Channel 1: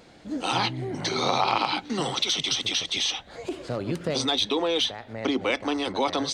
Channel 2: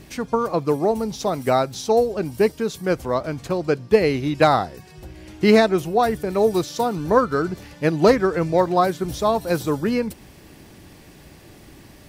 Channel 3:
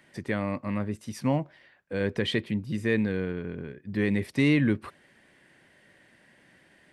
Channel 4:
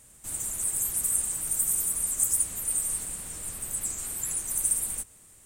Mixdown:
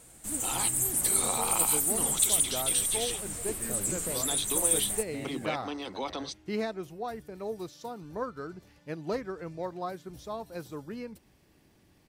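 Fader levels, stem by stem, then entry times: −10.0, −18.0, −19.5, 0.0 decibels; 0.00, 1.05, 0.75, 0.00 seconds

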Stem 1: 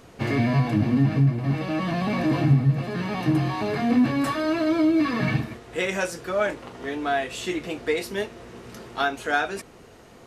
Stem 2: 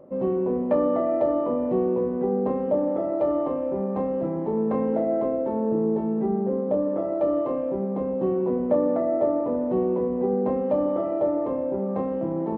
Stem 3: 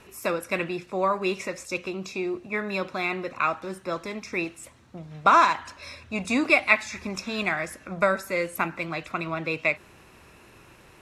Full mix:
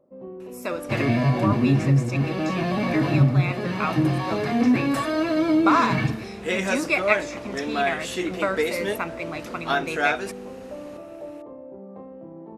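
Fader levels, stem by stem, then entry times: +0.5, −14.0, −3.0 decibels; 0.70, 0.00, 0.40 seconds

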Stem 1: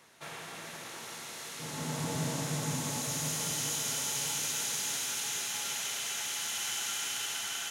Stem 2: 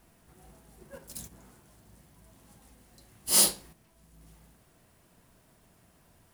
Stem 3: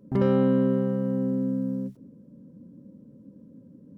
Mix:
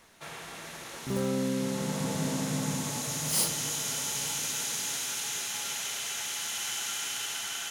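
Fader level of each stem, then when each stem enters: +1.0, −7.0, −8.5 decibels; 0.00, 0.00, 0.95 seconds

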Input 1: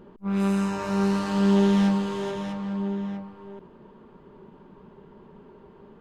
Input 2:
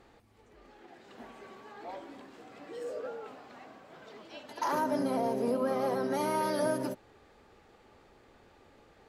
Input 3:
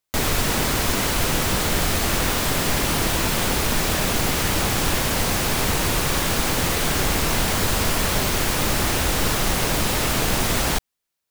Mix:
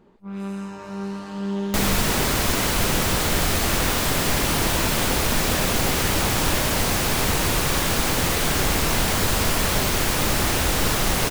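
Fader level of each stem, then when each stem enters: −7.0, −7.5, 0.0 decibels; 0.00, 0.00, 1.60 seconds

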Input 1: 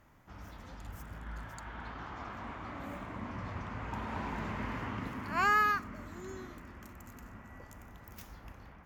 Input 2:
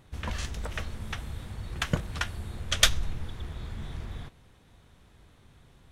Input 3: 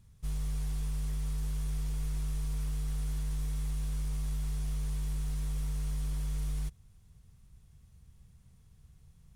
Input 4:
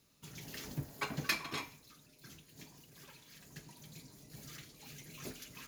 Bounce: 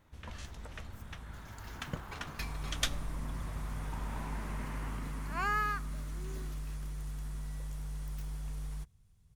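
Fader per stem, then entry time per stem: −5.5, −12.0, −6.5, −10.0 decibels; 0.00, 0.00, 2.15, 1.10 seconds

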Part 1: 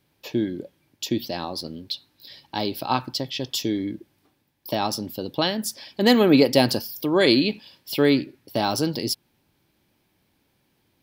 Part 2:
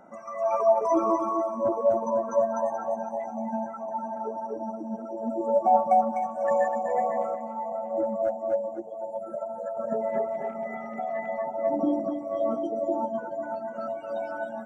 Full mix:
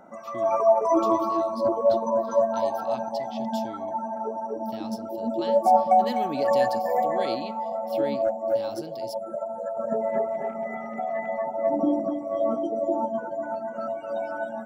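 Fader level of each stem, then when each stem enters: −16.5, +2.0 decibels; 0.00, 0.00 seconds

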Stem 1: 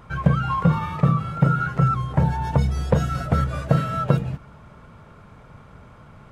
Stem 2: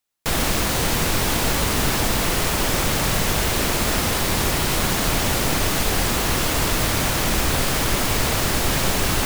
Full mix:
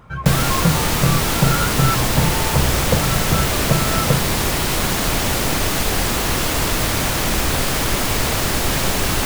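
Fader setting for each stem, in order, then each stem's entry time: +0.5, +1.5 decibels; 0.00, 0.00 seconds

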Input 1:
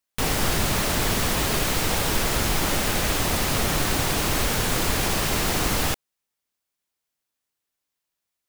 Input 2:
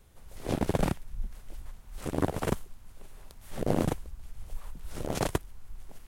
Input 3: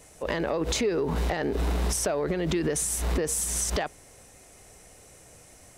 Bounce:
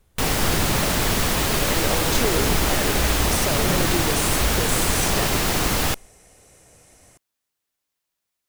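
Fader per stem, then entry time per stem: +2.0, −2.0, −0.5 decibels; 0.00, 0.00, 1.40 seconds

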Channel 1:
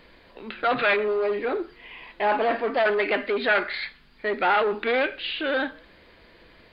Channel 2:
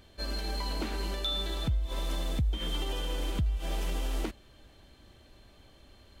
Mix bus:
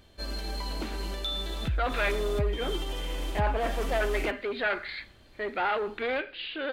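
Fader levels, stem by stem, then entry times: −7.0, −0.5 decibels; 1.15, 0.00 seconds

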